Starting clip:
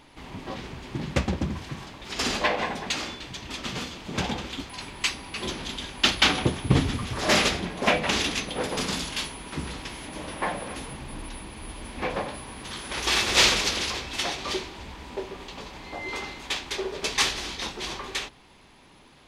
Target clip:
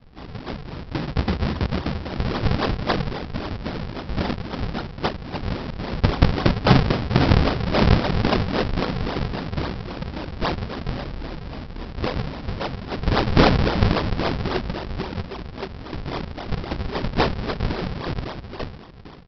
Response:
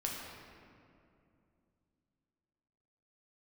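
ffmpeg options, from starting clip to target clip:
-af "aecho=1:1:447|894|1341|1788:0.668|0.207|0.0642|0.0199,aresample=11025,acrusher=samples=21:mix=1:aa=0.000001:lfo=1:lforange=33.6:lforate=3.7,aresample=44100,volume=1.68"

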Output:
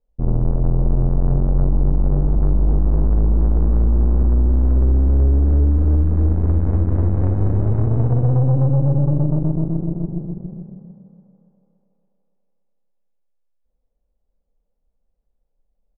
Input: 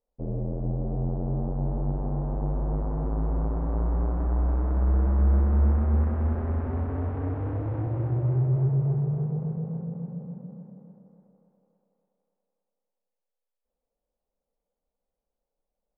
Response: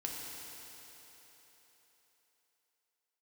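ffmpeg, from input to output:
-filter_complex "[0:a]aemphasis=mode=reproduction:type=riaa,acompressor=threshold=0.2:ratio=4,aeval=exprs='0.447*(cos(1*acos(clip(val(0)/0.447,-1,1)))-cos(1*PI/2))+0.0631*(cos(8*acos(clip(val(0)/0.447,-1,1)))-cos(8*PI/2))':c=same,asplit=2[s0][s1];[s1]adelay=280,highpass=300,lowpass=3400,asoftclip=type=hard:threshold=0.141,volume=0.178[s2];[s0][s2]amix=inputs=2:normalize=0"

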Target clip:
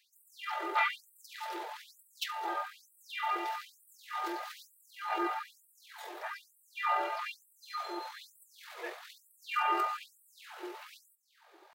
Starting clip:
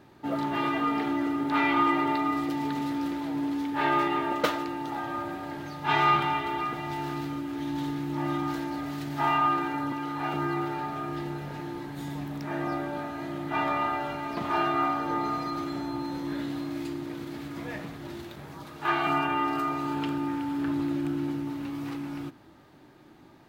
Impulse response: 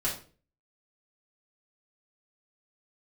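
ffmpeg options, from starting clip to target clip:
-af "atempo=2,afftfilt=real='re*gte(b*sr/1024,320*pow(7900/320,0.5+0.5*sin(2*PI*1.1*pts/sr)))':imag='im*gte(b*sr/1024,320*pow(7900/320,0.5+0.5*sin(2*PI*1.1*pts/sr)))':win_size=1024:overlap=0.75"

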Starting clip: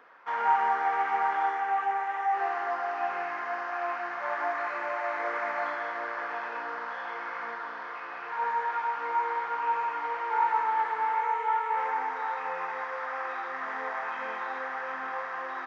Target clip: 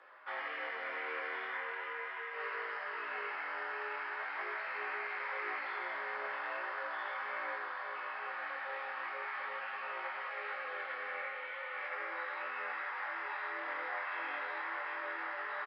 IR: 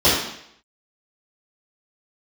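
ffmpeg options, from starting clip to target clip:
-filter_complex "[0:a]asplit=2[s0][s1];[1:a]atrim=start_sample=2205,asetrate=25137,aresample=44100[s2];[s1][s2]afir=irnorm=-1:irlink=0,volume=0.0266[s3];[s0][s3]amix=inputs=2:normalize=0,aresample=11025,aresample=44100,afreqshift=67,afftfilt=real='re*lt(hypot(re,im),0.0891)':imag='im*lt(hypot(re,im),0.0891)':win_size=1024:overlap=0.75,flanger=delay=17:depth=6.9:speed=0.4,lowshelf=f=280:g=-8"

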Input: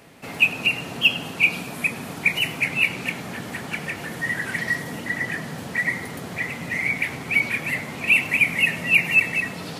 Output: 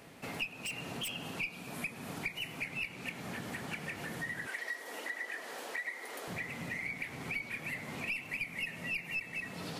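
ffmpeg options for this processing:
-filter_complex "[0:a]asettb=1/sr,asplit=3[s0][s1][s2];[s0]atrim=end=0.654[s3];[s1]atrim=start=0.65:end=1.31,asetpts=PTS-STARTPTS,afade=t=in:d=0.004:c=qsin,afade=t=out:st=0.656:d=0.004:c=qsin,aeval=exprs='0.119*(abs(mod(val(0)/0.119+3,4)-2)-1)':c=same[s4];[s2]atrim=start=1.306[s5];[s3][s4]acrossfade=d=0.004:c1=hsin:c2=qsin[s6];[s6][s5]acrossfade=d=0.004:c1=qsin:c2=hsin,aeval=exprs='0.562*(cos(1*acos(clip(val(0)/0.562,-1,1)))-cos(1*PI/2))+0.0891*(cos(2*acos(clip(val(0)/0.562,-1,1)))-cos(2*PI/2))':c=same,asettb=1/sr,asplit=3[s7][s8][s9];[s7]atrim=end=4.474[s10];[s8]atrim=start=4.47:end=6.28,asetpts=PTS-STARTPTS,afade=t=in:d=0.004:c=qsin,afade=t=out:st=1.806:d=0.004:c=qsin,highpass=f=380:w=0.5412,highpass=f=380:w=1.3066[s11];[s9]atrim=start=6.276[s12];[s10][s11]acrossfade=d=0.004:c1=hsin:c2=qsin[s13];[s13][s12]acrossfade=d=0.004:c1=qsin:c2=hsin,acompressor=threshold=0.0224:ratio=4,volume=0.562"

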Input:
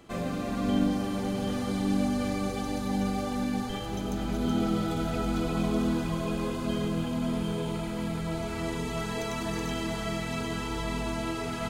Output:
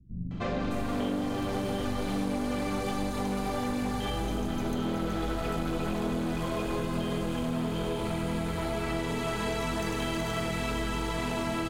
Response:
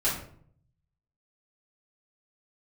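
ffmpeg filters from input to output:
-filter_complex "[0:a]aeval=exprs='clip(val(0),-1,0.0282)':c=same,acrossover=split=170|5700[s0][s1][s2];[s1]adelay=310[s3];[s2]adelay=610[s4];[s0][s3][s4]amix=inputs=3:normalize=0,acompressor=threshold=0.0224:ratio=6,volume=2"

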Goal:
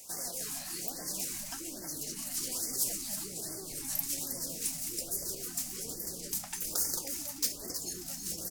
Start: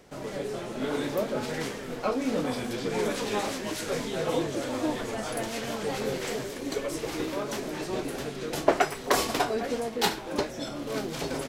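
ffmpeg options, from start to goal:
-af "asetrate=40440,aresample=44100,atempo=1.09051,asubboost=boost=6.5:cutoff=250,acompressor=threshold=0.0224:ratio=10,aexciter=amount=2.1:drive=9.9:freq=3700,tiltshelf=f=1200:g=-7.5,aecho=1:1:428:0.398,asetrate=59535,aresample=44100,afftfilt=real='re*(1-between(b*sr/1024,390*pow(3200/390,0.5+0.5*sin(2*PI*1.2*pts/sr))/1.41,390*pow(3200/390,0.5+0.5*sin(2*PI*1.2*pts/sr))*1.41))':imag='im*(1-between(b*sr/1024,390*pow(3200/390,0.5+0.5*sin(2*PI*1.2*pts/sr))/1.41,390*pow(3200/390,0.5+0.5*sin(2*PI*1.2*pts/sr))*1.41))':win_size=1024:overlap=0.75,volume=0.596"

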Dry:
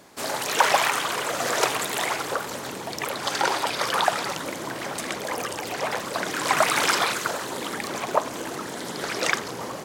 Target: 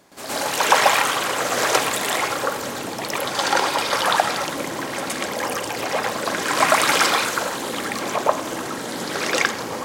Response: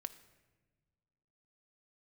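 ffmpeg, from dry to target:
-filter_complex "[0:a]asplit=2[s0][s1];[1:a]atrim=start_sample=2205,adelay=117[s2];[s1][s2]afir=irnorm=-1:irlink=0,volume=3.55[s3];[s0][s3]amix=inputs=2:normalize=0,volume=0.631"

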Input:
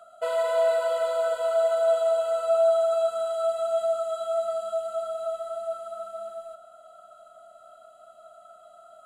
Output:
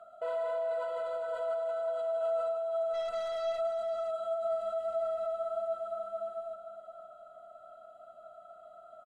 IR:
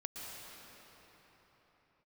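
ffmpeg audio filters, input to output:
-filter_complex "[0:a]asettb=1/sr,asplit=3[s0][s1][s2];[s0]atrim=end=4.524[s3];[s1]atrim=start=4.52:end=5.32,asetpts=PTS-STARTPTS,afade=t=in:d=0.004:c=qsin,afade=t=out:st=0.796:d=0.004:c=qsin,aeval=exprs='val(0)+0.5*0.00376*sgn(val(0))':c=same[s4];[s2]atrim=start=5.316[s5];[s3][s4]acrossfade=d=0.004:c1=hsin:c2=qsin[s6];[s6][s5]acrossfade=d=0.004:c1=qsin:c2=hsin,lowpass=f=1100:p=1,alimiter=level_in=1.5:limit=0.0631:level=0:latency=1:release=15,volume=0.668,asplit=3[s7][s8][s9];[s7]afade=t=out:st=2.93:d=0.02[s10];[s8]aeval=exprs='0.0422*(cos(1*acos(clip(val(0)/0.0422,-1,1)))-cos(1*PI/2))+0.00422*(cos(5*acos(clip(val(0)/0.0422,-1,1)))-cos(5*PI/2))+0.00106*(cos(8*acos(clip(val(0)/0.0422,-1,1)))-cos(8*PI/2))':c=same,afade=t=in:st=2.93:d=0.02,afade=t=out:st=3.58:d=0.02[s11];[s9]afade=t=in:st=3.58:d=0.02[s12];[s10][s11][s12]amix=inputs=3:normalize=0,aecho=1:1:515:0.299"

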